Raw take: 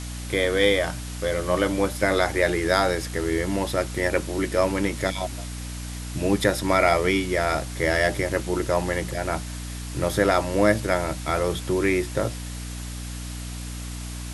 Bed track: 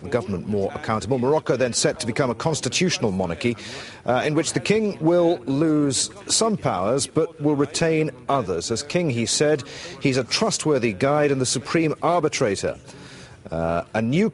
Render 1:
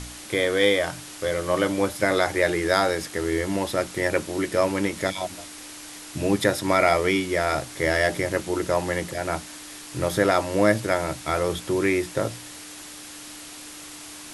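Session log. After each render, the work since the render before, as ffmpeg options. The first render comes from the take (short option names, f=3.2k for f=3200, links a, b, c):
-af "bandreject=f=60:t=h:w=4,bandreject=f=120:t=h:w=4,bandreject=f=180:t=h:w=4,bandreject=f=240:t=h:w=4"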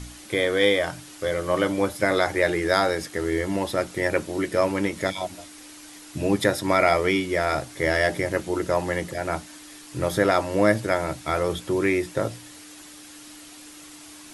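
-af "afftdn=nr=6:nf=-41"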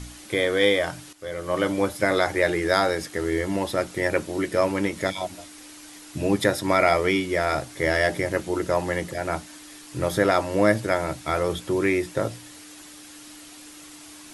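-filter_complex "[0:a]asplit=2[a][b];[a]atrim=end=1.13,asetpts=PTS-STARTPTS,afade=t=out:st=1.126:d=0.004:c=hsin:silence=0.199526[c];[b]atrim=start=1.13,asetpts=PTS-STARTPTS,afade=t=in:d=0.56:silence=0.199526[d];[c][d]concat=n=2:v=0:a=1"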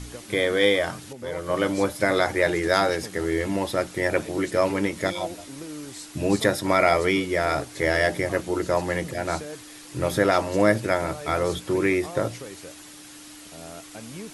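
-filter_complex "[1:a]volume=-19dB[a];[0:a][a]amix=inputs=2:normalize=0"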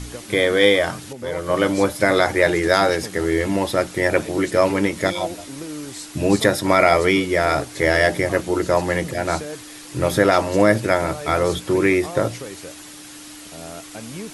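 -af "volume=5dB,alimiter=limit=-2dB:level=0:latency=1"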